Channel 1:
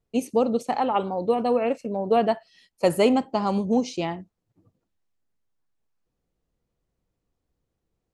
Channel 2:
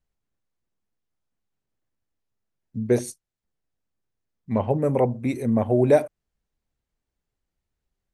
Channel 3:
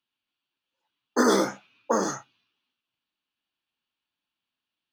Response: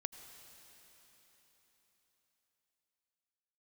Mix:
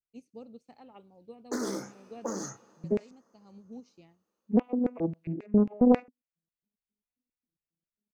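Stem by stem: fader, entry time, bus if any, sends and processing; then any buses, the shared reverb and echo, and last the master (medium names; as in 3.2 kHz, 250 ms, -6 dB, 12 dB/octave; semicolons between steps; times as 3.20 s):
-16.5 dB, 0.00 s, bus A, no send, low-pass 4 kHz 12 dB/octave; treble shelf 2.4 kHz +9.5 dB; upward expansion 1.5:1, over -40 dBFS; auto duck -13 dB, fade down 0.55 s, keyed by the second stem
+2.0 dB, 0.00 s, no bus, no send, vocoder on a broken chord major triad, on E3, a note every 414 ms; LFO band-pass square 3.7 Hz 260–2600 Hz
+1.5 dB, 0.35 s, bus A, send -23.5 dB, none
bus A: 0.0 dB, peaking EQ 1.1 kHz -14 dB 2.8 oct; compression 4:1, threshold -33 dBFS, peak gain reduction 10.5 dB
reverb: on, RT60 4.4 s, pre-delay 73 ms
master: peaking EQ 3.3 kHz -9 dB 0.43 oct; loudspeaker Doppler distortion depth 0.69 ms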